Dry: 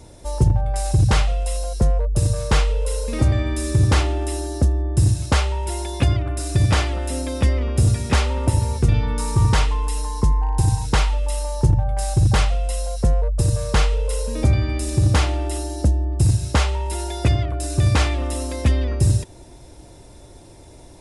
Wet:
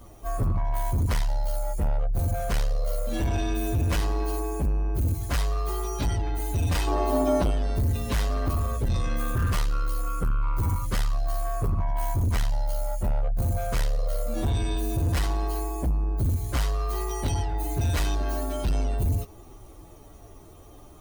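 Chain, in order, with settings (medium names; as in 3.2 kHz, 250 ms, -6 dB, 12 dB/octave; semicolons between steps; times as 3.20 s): frequency axis rescaled in octaves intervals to 119%; saturation -20 dBFS, distortion -11 dB; 6.87–7.51 s: high-order bell 580 Hz +9 dB 2.6 oct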